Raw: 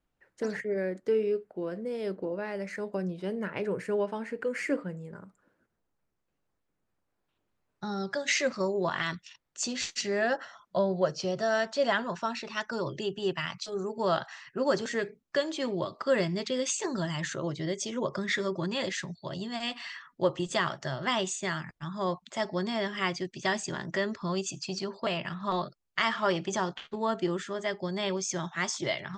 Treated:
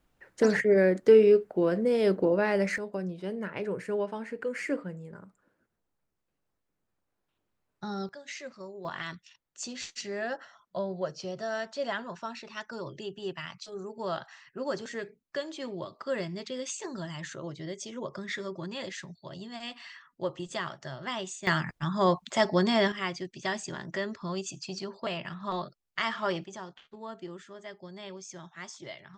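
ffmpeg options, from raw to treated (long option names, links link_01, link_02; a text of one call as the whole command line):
ffmpeg -i in.wav -af "asetnsamples=nb_out_samples=441:pad=0,asendcmd='2.78 volume volume -1.5dB;8.09 volume volume -14dB;8.85 volume volume -6dB;21.47 volume volume 6.5dB;22.92 volume volume -3dB;26.44 volume volume -12dB',volume=9dB" out.wav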